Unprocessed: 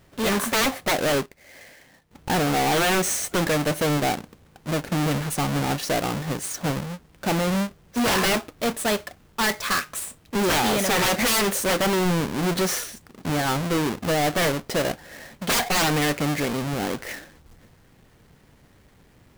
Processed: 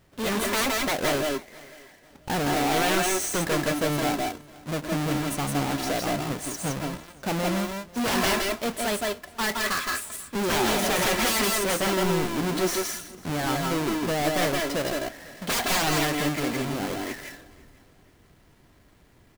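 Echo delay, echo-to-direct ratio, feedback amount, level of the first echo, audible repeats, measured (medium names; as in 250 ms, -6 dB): 165 ms, -1.0 dB, no regular repeats, -1.5 dB, 5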